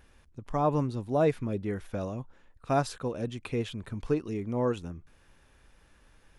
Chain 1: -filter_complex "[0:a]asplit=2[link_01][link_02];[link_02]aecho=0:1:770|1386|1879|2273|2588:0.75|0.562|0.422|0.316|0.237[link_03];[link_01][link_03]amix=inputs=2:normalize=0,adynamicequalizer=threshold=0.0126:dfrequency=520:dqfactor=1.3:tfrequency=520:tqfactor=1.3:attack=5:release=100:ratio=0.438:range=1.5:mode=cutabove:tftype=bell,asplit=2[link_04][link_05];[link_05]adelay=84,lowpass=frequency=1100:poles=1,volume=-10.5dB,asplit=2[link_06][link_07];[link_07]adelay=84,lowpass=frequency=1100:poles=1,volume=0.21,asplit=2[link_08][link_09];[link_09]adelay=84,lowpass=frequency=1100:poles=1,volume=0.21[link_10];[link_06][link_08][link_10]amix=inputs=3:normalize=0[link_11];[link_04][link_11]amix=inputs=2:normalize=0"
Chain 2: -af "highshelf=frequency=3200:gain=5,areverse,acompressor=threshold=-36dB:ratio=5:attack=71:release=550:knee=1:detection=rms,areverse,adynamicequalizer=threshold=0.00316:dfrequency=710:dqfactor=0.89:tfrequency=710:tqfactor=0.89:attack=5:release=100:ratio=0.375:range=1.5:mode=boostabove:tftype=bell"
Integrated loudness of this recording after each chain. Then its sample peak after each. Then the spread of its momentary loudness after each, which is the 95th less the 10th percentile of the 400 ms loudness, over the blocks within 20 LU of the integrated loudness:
−29.5, −38.5 LKFS; −13.0, −21.5 dBFS; 6, 9 LU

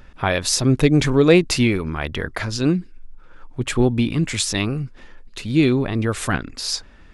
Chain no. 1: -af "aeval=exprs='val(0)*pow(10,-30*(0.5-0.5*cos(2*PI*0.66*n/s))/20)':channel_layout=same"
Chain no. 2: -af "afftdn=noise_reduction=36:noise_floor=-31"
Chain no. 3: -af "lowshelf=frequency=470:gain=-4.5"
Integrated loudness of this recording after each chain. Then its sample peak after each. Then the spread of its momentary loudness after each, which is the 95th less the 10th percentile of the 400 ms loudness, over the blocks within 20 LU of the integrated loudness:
−25.0, −20.0, −22.0 LKFS; −6.5, −2.0, −4.5 dBFS; 24, 12, 11 LU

